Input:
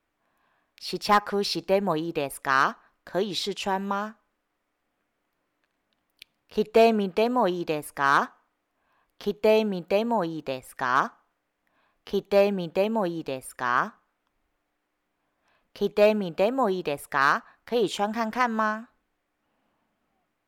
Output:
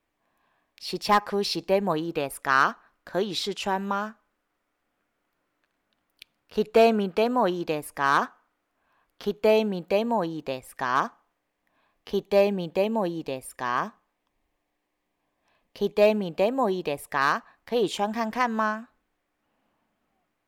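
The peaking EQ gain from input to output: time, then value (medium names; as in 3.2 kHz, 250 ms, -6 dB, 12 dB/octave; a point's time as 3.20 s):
peaking EQ 1.4 kHz 0.21 oct
-7 dB
from 1.90 s +3 dB
from 7.64 s -4 dB
from 8.23 s +3.5 dB
from 9.51 s -6.5 dB
from 12.29 s -14 dB
from 17.10 s -8 dB
from 18.60 s -1.5 dB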